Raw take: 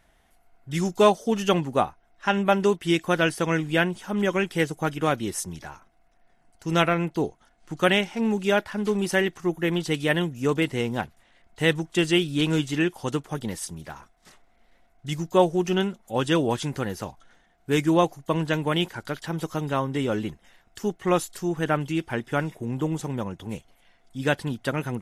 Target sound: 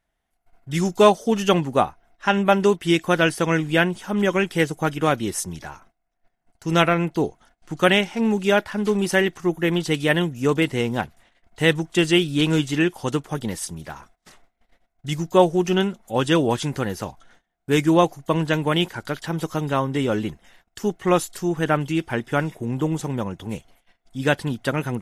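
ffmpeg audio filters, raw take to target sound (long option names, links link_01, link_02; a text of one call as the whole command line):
ffmpeg -i in.wav -af "agate=range=-18dB:threshold=-56dB:ratio=16:detection=peak,volume=3.5dB" out.wav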